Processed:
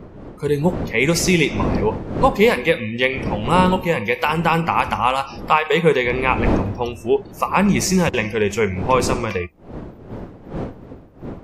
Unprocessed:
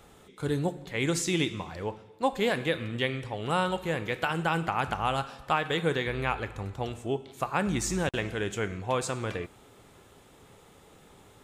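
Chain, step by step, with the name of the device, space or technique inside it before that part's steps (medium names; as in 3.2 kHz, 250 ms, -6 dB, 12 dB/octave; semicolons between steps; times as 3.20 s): spectral noise reduction 29 dB; rippled EQ curve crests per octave 0.83, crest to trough 9 dB; smartphone video outdoors (wind noise 360 Hz -38 dBFS; level rider gain up to 5 dB; trim +5.5 dB; AAC 96 kbps 48 kHz)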